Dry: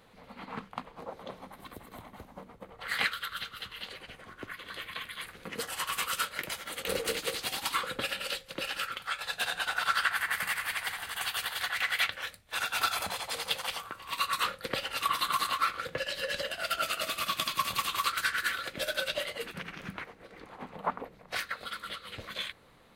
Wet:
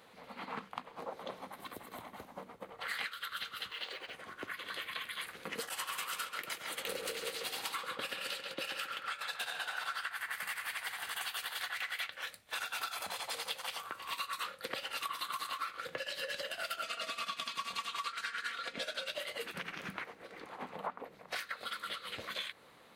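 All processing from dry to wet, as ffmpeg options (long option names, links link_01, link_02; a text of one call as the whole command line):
ffmpeg -i in.wav -filter_complex "[0:a]asettb=1/sr,asplit=3[link_01][link_02][link_03];[link_01]atrim=end=3.714[link_04];[link_02]atrim=start=3.71:end=4.13,asetpts=PTS-STARTPTS,afade=type=in:duration=0.004:curve=qsin,afade=type=out:start_time=0.416:duration=0.004:curve=qsin,lowpass=6600,lowshelf=frequency=270:width_type=q:width=1.5:gain=-6.5,acrusher=bits=6:mode=log:mix=0:aa=0.000001[link_05];[link_03]atrim=start=4.126[link_06];[link_04][link_05]acrossfade=duration=0.004:curve1=hsin:curve2=qsin[link_07];[link_07][link_06]acrossfade=duration=0.004:curve1=qsin:curve2=hsin,asettb=1/sr,asplit=3[link_08][link_09][link_10];[link_08]atrim=end=5.694[link_11];[link_09]atrim=start=5.69:end=10.01,asetpts=PTS-STARTPTS,afade=type=in:duration=0.004:curve=qsin,afade=type=out:start_time=4.316:duration=0.004:curve=qsin,agate=range=-33dB:threshold=-39dB:ratio=3:release=100:detection=peak,asplit=2[link_12][link_13];[link_13]adelay=135,lowpass=frequency=3100:poles=1,volume=-5.5dB,asplit=2[link_14][link_15];[link_15]adelay=135,lowpass=frequency=3100:poles=1,volume=0.48,asplit=2[link_16][link_17];[link_17]adelay=135,lowpass=frequency=3100:poles=1,volume=0.48,asplit=2[link_18][link_19];[link_19]adelay=135,lowpass=frequency=3100:poles=1,volume=0.48,asplit=2[link_20][link_21];[link_21]adelay=135,lowpass=frequency=3100:poles=1,volume=0.48,asplit=2[link_22][link_23];[link_23]adelay=135,lowpass=frequency=3100:poles=1,volume=0.48[link_24];[link_12][link_14][link_16][link_18][link_20][link_22][link_24]amix=inputs=7:normalize=0,atrim=end_sample=190512[link_25];[link_10]atrim=start=10.006[link_26];[link_11][link_25]acrossfade=duration=0.004:curve1=hsin:curve2=qsin[link_27];[link_27][link_26]acrossfade=duration=0.004:curve1=qsin:curve2=hsin,asettb=1/sr,asplit=3[link_28][link_29][link_30];[link_28]atrim=end=16.834[link_31];[link_29]atrim=start=16.83:end=19.08,asetpts=PTS-STARTPTS,afade=type=in:duration=0.004:curve=qsin,afade=type=out:start_time=2.246:duration=0.004:curve=qsin,lowpass=7300,aecho=1:1:4.3:0.56,atrim=end_sample=99225[link_32];[link_30]atrim=start=19.076[link_33];[link_31][link_32]acrossfade=duration=0.004:curve1=hsin:curve2=qsin[link_34];[link_34][link_33]acrossfade=duration=0.004:curve1=qsin:curve2=hsin,highpass=frequency=310:poles=1,acompressor=threshold=-38dB:ratio=6,volume=1.5dB" out.wav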